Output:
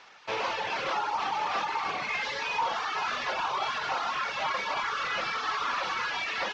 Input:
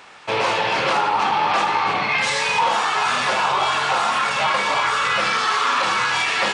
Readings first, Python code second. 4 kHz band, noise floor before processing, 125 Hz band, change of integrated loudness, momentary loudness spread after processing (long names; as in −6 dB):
−11.5 dB, −23 dBFS, −15.5 dB, −11.0 dB, 1 LU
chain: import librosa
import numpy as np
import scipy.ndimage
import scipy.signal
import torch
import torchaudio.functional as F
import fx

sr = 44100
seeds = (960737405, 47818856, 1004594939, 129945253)

y = fx.cvsd(x, sr, bps=32000)
y = fx.dereverb_blind(y, sr, rt60_s=0.75)
y = fx.low_shelf(y, sr, hz=280.0, db=-9.0)
y = F.gain(torch.from_numpy(y), -7.5).numpy()